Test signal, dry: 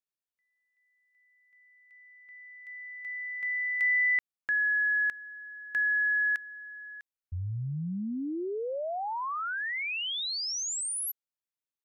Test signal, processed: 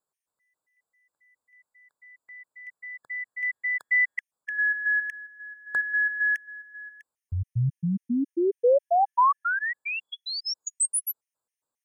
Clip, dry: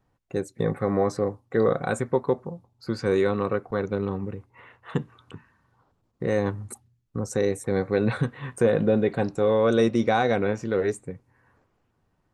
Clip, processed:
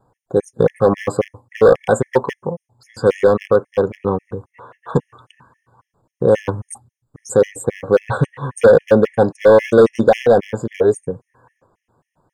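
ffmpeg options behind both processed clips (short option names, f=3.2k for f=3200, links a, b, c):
-af "equalizer=f=125:t=o:w=1:g=7,equalizer=f=250:t=o:w=1:g=3,equalizer=f=500:t=o:w=1:g=10,equalizer=f=1k:t=o:w=1:g=11,equalizer=f=4k:t=o:w=1:g=-4,equalizer=f=8k:t=o:w=1:g=10,volume=6.5dB,asoftclip=hard,volume=-6.5dB,afftfilt=real='re*gt(sin(2*PI*3.7*pts/sr)*(1-2*mod(floor(b*sr/1024/1700),2)),0)':imag='im*gt(sin(2*PI*3.7*pts/sr)*(1-2*mod(floor(b*sr/1024/1700),2)),0)':win_size=1024:overlap=0.75,volume=2.5dB"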